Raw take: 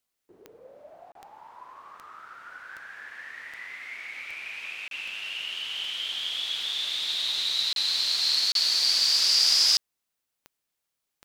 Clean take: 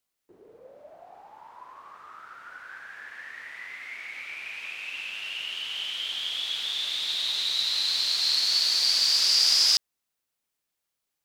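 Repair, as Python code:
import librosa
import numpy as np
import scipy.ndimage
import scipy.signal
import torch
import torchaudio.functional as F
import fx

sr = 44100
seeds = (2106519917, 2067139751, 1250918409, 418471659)

y = fx.fix_declick_ar(x, sr, threshold=10.0)
y = fx.fix_interpolate(y, sr, at_s=(1.12, 4.88, 7.73, 8.52), length_ms=32.0)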